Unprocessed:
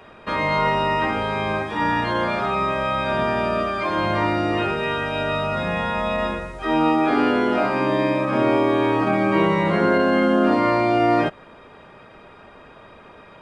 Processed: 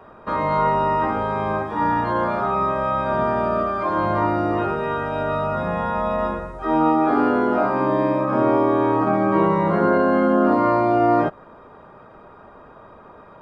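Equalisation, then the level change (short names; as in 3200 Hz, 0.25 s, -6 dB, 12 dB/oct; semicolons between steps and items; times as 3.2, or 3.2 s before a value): resonant high shelf 1700 Hz -10 dB, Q 1.5; 0.0 dB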